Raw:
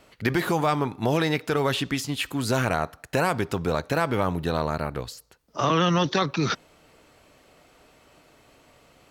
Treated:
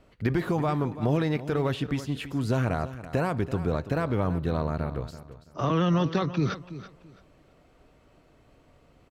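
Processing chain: tilt -2.5 dB/oct; notch 850 Hz, Q 22; feedback echo 0.333 s, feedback 24%, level -14 dB; gain -6 dB

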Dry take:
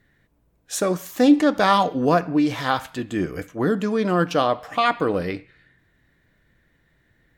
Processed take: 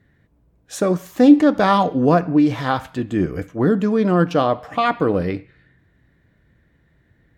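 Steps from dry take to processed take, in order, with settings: HPF 56 Hz; tilt -2 dB/oct; gain +1 dB

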